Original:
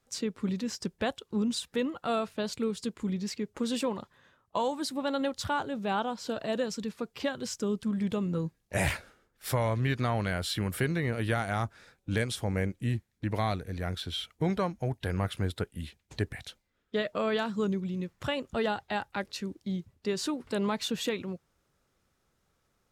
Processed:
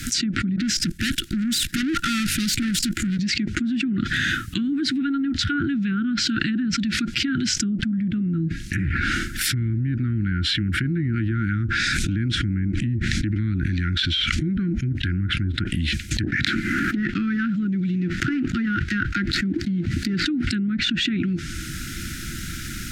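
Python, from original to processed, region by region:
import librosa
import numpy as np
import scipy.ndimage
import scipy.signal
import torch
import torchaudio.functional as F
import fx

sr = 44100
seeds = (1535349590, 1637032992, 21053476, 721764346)

y = fx.chain(x, sr, fx.level_steps(step_db=22),
    fx.tube_stage(drive_db=54.0, bias=0.35), at=(0.56, 3.19))
y = fx.chain(y, sr, fx.lowpass(hz=9200.0, slope=12),
    fx.high_shelf(hz=4000.0, db=6.5),
    fx.pre_swell(db_per_s=120.0), at=(11.09, 14.81))
y = fx.chain(y, sr, fx.median_filter(points=15),
    fx.low_shelf(hz=150.0, db=-8.0),
    fx.band_squash(depth_pct=100), at=(16.23, 20.26))
y = fx.env_lowpass_down(y, sr, base_hz=860.0, full_db=-25.5)
y = scipy.signal.sosfilt(scipy.signal.cheby1(5, 1.0, [340.0, 1400.0], 'bandstop', fs=sr, output='sos'), y)
y = fx.env_flatten(y, sr, amount_pct=100)
y = F.gain(torch.from_numpy(y), 4.5).numpy()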